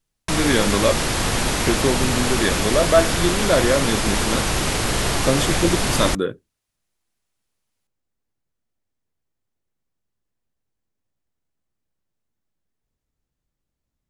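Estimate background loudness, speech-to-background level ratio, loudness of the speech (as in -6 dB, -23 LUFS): -21.0 LUFS, -1.0 dB, -22.0 LUFS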